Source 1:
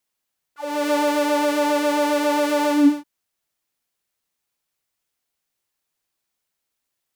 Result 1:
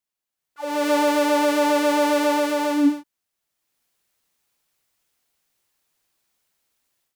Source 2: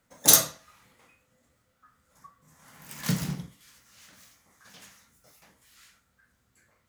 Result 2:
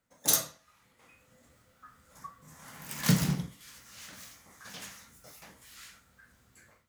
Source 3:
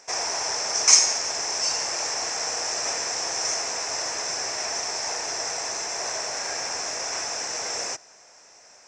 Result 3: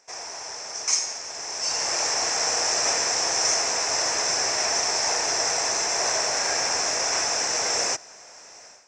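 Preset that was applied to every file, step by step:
AGC gain up to 15 dB; gain -8.5 dB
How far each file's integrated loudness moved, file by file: 0.0, -7.0, +1.5 LU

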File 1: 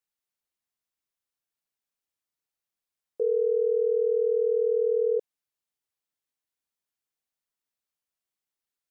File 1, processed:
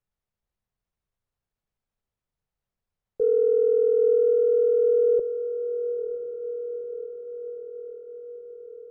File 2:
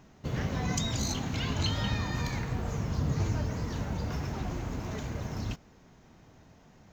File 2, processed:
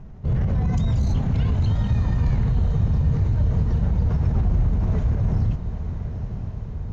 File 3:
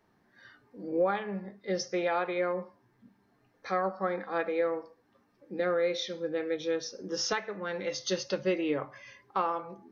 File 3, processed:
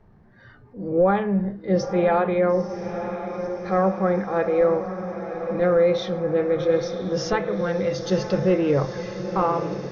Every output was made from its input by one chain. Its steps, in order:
tilt -4.5 dB/oct; transient shaper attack -4 dB, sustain +2 dB; bell 290 Hz -9 dB 0.55 oct; limiter -18 dBFS; on a send: diffused feedback echo 0.947 s, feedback 64%, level -9.5 dB; on the sum: match loudness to -23 LUFS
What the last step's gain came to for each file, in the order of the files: +3.5, +3.5, +7.5 dB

